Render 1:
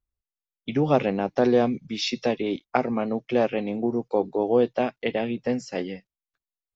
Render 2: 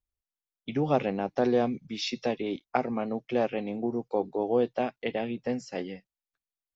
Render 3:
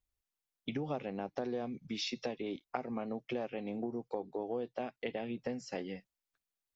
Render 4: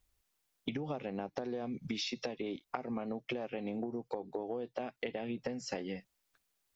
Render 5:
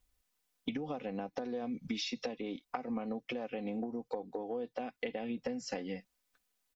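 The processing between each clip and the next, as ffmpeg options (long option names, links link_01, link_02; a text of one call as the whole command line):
ffmpeg -i in.wav -af "equalizer=frequency=770:width_type=o:width=0.22:gain=2.5,volume=-5dB" out.wav
ffmpeg -i in.wav -af "acompressor=threshold=-37dB:ratio=5,volume=1.5dB" out.wav
ffmpeg -i in.wav -af "acompressor=threshold=-45dB:ratio=10,volume=10.5dB" out.wav
ffmpeg -i in.wav -af "aecho=1:1:4:0.5,volume=-1.5dB" out.wav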